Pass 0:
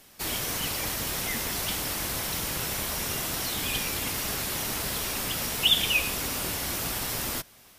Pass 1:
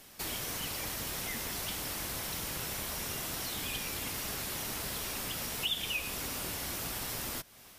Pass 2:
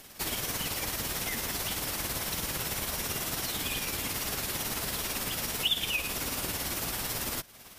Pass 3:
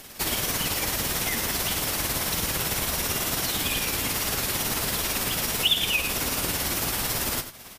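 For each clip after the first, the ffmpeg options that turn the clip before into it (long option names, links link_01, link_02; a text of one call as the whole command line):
ffmpeg -i in.wav -af "acompressor=threshold=-40dB:ratio=2" out.wav
ffmpeg -i in.wav -af "tremolo=f=18:d=0.42,volume=6dB" out.wav
ffmpeg -i in.wav -af "asoftclip=type=hard:threshold=-19dB,aecho=1:1:90:0.282,volume=6dB" out.wav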